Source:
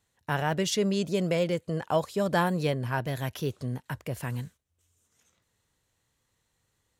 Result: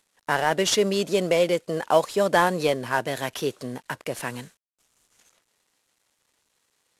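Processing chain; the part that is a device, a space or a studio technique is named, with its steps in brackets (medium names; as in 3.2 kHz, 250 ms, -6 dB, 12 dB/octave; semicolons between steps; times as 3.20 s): early wireless headset (high-pass 300 Hz 12 dB/octave; CVSD coder 64 kbps); trim +7.5 dB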